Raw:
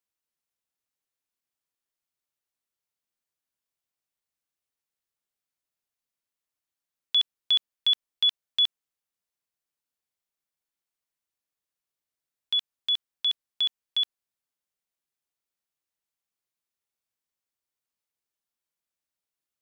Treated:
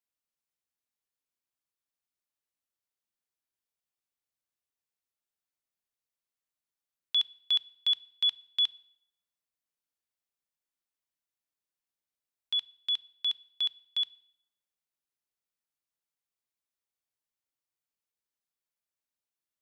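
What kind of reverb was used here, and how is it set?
feedback delay network reverb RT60 0.8 s, low-frequency decay 0.8×, high-frequency decay 0.85×, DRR 19.5 dB
level −4.5 dB

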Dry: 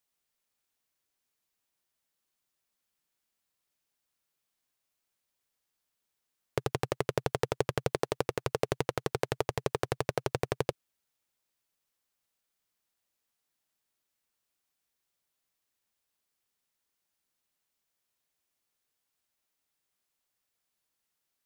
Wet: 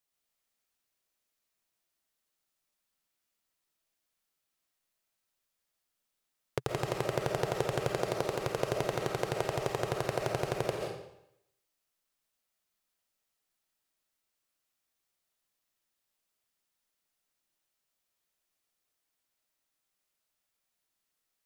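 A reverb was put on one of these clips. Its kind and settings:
comb and all-pass reverb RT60 0.78 s, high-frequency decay 0.95×, pre-delay 95 ms, DRR 0.5 dB
level −2.5 dB

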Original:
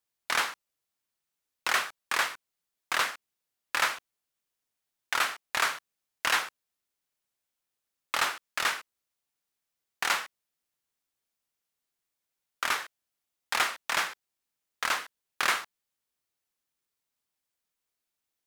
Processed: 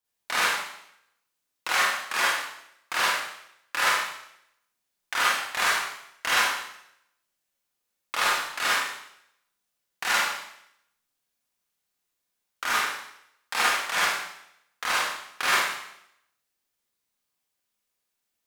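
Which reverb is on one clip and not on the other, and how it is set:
four-comb reverb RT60 0.75 s, combs from 31 ms, DRR −7 dB
level −3 dB

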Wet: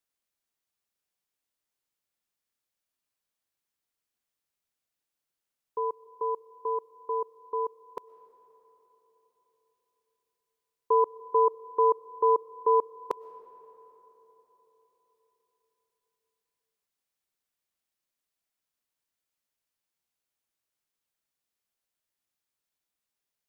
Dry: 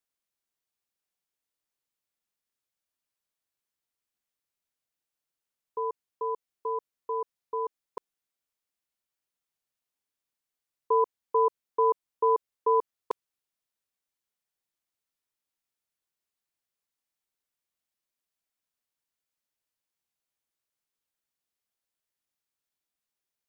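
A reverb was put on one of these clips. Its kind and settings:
comb and all-pass reverb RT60 4.3 s, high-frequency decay 0.45×, pre-delay 80 ms, DRR 18 dB
level +1 dB

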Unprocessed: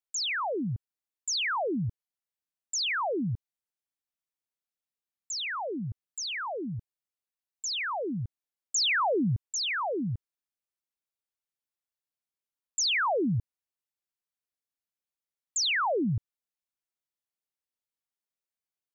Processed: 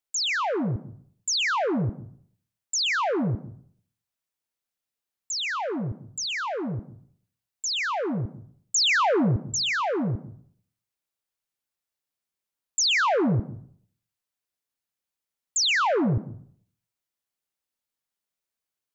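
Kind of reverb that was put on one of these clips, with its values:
dense smooth reverb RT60 0.58 s, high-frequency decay 0.7×, pre-delay 110 ms, DRR 13 dB
level +4.5 dB

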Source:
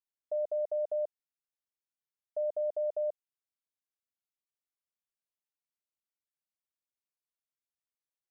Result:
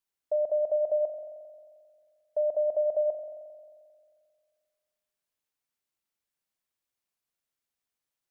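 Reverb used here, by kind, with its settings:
spring reverb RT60 2 s, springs 44 ms, chirp 50 ms, DRR 7 dB
level +6 dB

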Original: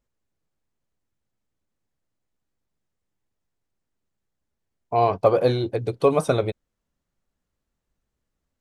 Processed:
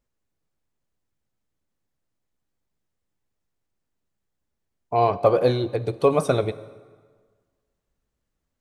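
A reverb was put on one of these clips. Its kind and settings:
dense smooth reverb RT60 1.6 s, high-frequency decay 0.75×, DRR 15 dB

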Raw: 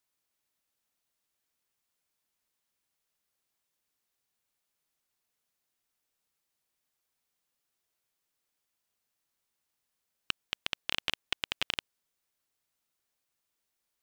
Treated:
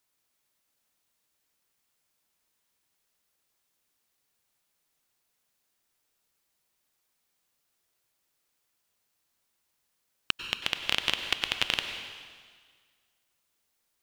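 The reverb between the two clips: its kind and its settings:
dense smooth reverb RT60 1.7 s, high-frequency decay 1×, pre-delay 85 ms, DRR 6.5 dB
level +5 dB

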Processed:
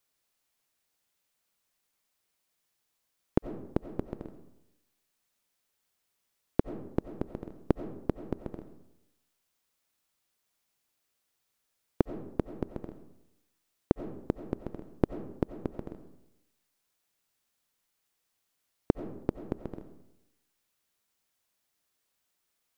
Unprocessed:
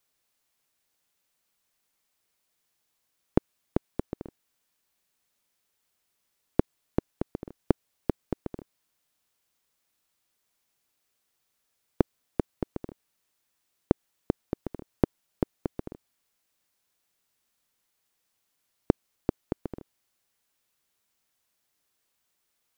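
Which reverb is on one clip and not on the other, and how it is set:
comb and all-pass reverb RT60 0.88 s, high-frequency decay 0.55×, pre-delay 50 ms, DRR 10 dB
level −2.5 dB

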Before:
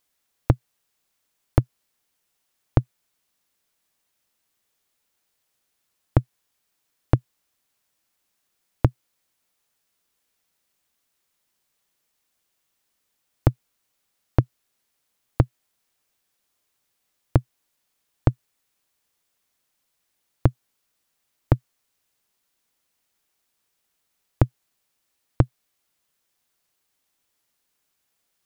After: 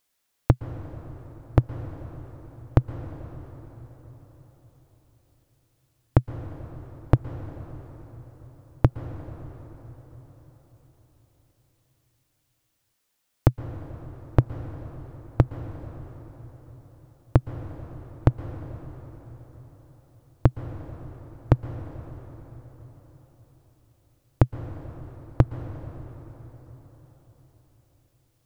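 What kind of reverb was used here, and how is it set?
dense smooth reverb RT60 4.8 s, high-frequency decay 0.65×, pre-delay 105 ms, DRR 9.5 dB

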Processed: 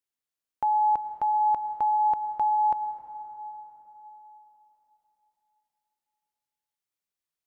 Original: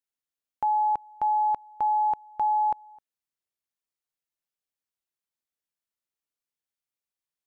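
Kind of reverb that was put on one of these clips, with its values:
dense smooth reverb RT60 4 s, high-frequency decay 0.65×, pre-delay 80 ms, DRR 9.5 dB

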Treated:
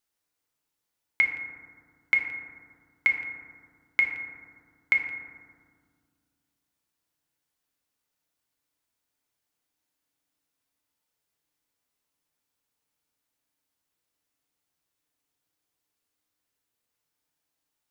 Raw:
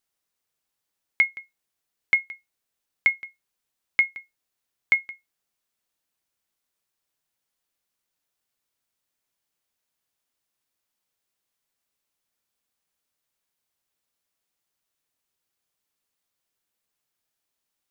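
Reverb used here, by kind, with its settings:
feedback delay network reverb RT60 1.8 s, low-frequency decay 1.55×, high-frequency decay 0.3×, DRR 2 dB
level −2 dB

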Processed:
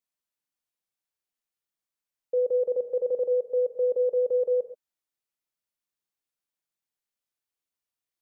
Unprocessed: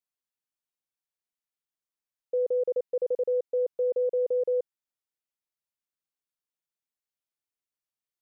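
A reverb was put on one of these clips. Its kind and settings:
reverb whose tail is shaped and stops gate 150 ms flat, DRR 7.5 dB
level +1 dB

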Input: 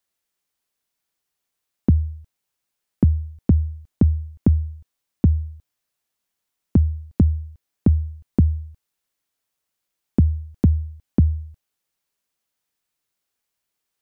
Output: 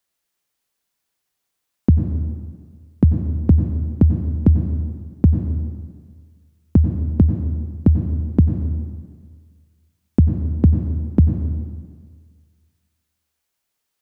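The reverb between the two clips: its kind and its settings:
dense smooth reverb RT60 1.7 s, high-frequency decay 0.8×, pre-delay 80 ms, DRR 6 dB
level +2.5 dB

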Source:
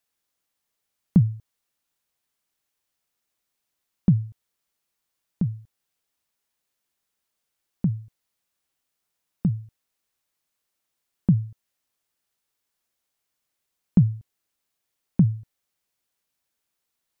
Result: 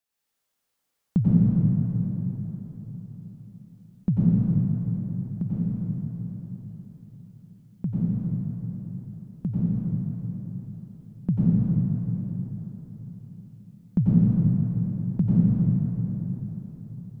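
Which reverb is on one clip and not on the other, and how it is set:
dense smooth reverb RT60 4.6 s, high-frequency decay 0.55×, pre-delay 80 ms, DRR −9 dB
level −6 dB

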